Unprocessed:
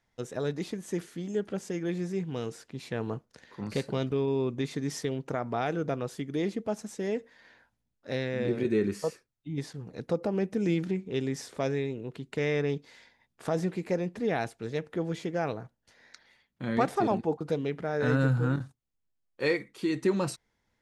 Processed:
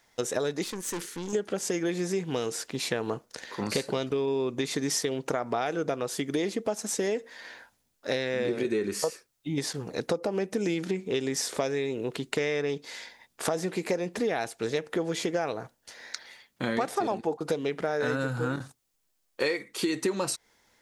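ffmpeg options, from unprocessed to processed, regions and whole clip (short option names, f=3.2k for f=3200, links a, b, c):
-filter_complex "[0:a]asettb=1/sr,asplit=3[a][b][c];[a]atrim=end=0.644[d];[b]atrim=start=0.64:end=1.33,asetpts=PTS-STARTPTS,afade=t=in:d=0.004:c=qsin,afade=t=out:st=0.686:d=0.004:c=qsin,aeval=exprs='(tanh(89.1*val(0)+0.8)-tanh(0.8))/89.1':c=same,equalizer=f=680:t=o:w=0.3:g=-13.5[e];[c]atrim=start=1.326[f];[d][e]acrossfade=d=0.004:c1=hsin:c2=qsin[g];[g][f]acrossfade=d=0.004:c1=qsin:c2=hsin,acontrast=38,bass=f=250:g=-11,treble=f=4k:g=6,acompressor=threshold=-32dB:ratio=6,volume=6.5dB"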